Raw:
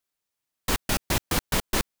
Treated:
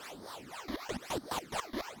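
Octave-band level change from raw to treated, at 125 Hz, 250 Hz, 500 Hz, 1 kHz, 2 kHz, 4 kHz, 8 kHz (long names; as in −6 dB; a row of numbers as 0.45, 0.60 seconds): −17.5, −9.0, −7.0, −6.5, −12.0, −12.5, −15.5 decibels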